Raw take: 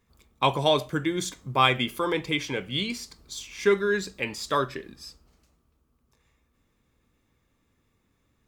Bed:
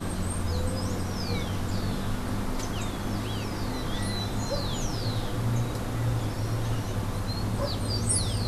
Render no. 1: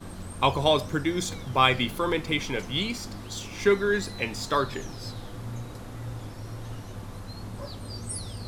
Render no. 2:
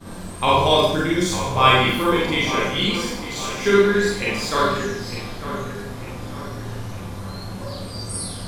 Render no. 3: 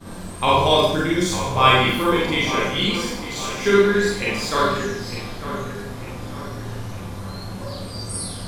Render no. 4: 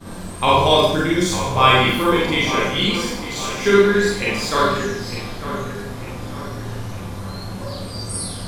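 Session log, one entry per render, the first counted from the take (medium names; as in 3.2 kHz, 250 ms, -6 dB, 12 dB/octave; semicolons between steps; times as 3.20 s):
add bed -9 dB
feedback echo behind a low-pass 902 ms, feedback 45%, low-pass 2.8 kHz, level -10.5 dB; Schroeder reverb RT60 0.71 s, combs from 32 ms, DRR -6.5 dB
no audible change
trim +2 dB; peak limiter -2 dBFS, peak gain reduction 1.5 dB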